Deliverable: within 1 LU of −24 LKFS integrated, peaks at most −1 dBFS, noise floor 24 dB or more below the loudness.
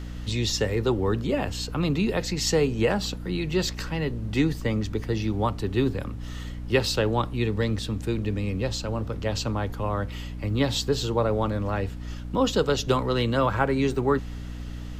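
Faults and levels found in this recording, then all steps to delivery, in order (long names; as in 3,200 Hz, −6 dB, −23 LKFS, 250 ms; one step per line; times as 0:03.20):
mains hum 60 Hz; hum harmonics up to 300 Hz; level of the hum −33 dBFS; background noise floor −35 dBFS; target noise floor −50 dBFS; integrated loudness −26.0 LKFS; sample peak −8.5 dBFS; target loudness −24.0 LKFS
→ hum removal 60 Hz, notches 5
noise reduction from a noise print 15 dB
level +2 dB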